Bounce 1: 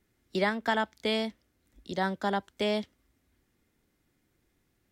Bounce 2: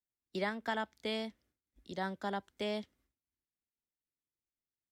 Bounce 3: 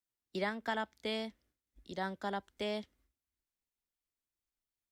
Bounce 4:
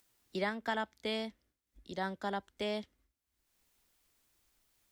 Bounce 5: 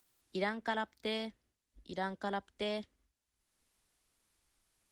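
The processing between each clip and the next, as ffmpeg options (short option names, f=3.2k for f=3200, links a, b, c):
-af "agate=range=-33dB:threshold=-58dB:ratio=3:detection=peak,volume=-8dB"
-af "asubboost=boost=3.5:cutoff=65"
-af "acompressor=mode=upward:threshold=-59dB:ratio=2.5,volume=1dB"
-ar 48000 -c:a libopus -b:a 20k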